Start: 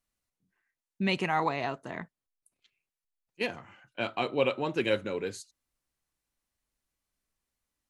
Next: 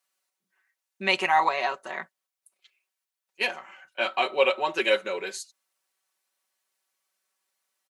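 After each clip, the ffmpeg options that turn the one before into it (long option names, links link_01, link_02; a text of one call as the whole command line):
ffmpeg -i in.wav -af "highpass=590,aecho=1:1:5.3:0.77,volume=5.5dB" out.wav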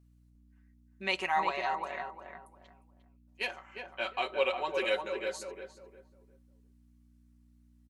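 ffmpeg -i in.wav -filter_complex "[0:a]aeval=exprs='val(0)+0.00224*(sin(2*PI*60*n/s)+sin(2*PI*2*60*n/s)/2+sin(2*PI*3*60*n/s)/3+sin(2*PI*4*60*n/s)/4+sin(2*PI*5*60*n/s)/5)':channel_layout=same,asplit=2[link_01][link_02];[link_02]adelay=354,lowpass=frequency=1300:poles=1,volume=-4dB,asplit=2[link_03][link_04];[link_04]adelay=354,lowpass=frequency=1300:poles=1,volume=0.3,asplit=2[link_05][link_06];[link_06]adelay=354,lowpass=frequency=1300:poles=1,volume=0.3,asplit=2[link_07][link_08];[link_08]adelay=354,lowpass=frequency=1300:poles=1,volume=0.3[link_09];[link_03][link_05][link_07][link_09]amix=inputs=4:normalize=0[link_10];[link_01][link_10]amix=inputs=2:normalize=0,volume=-8dB" out.wav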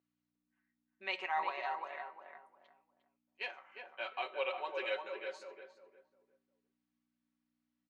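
ffmpeg -i in.wav -af "flanger=delay=8.7:depth=6.7:regen=-86:speed=0.31:shape=triangular,highpass=470,lowpass=3700,volume=-1dB" out.wav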